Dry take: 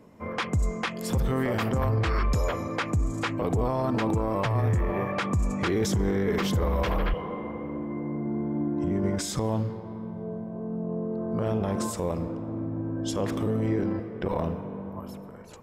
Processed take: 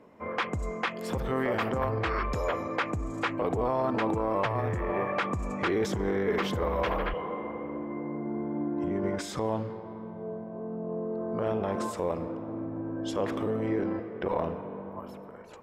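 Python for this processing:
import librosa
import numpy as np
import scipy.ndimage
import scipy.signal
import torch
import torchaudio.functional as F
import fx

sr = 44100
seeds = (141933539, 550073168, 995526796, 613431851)

y = fx.bass_treble(x, sr, bass_db=-10, treble_db=-11)
y = y * 10.0 ** (1.0 / 20.0)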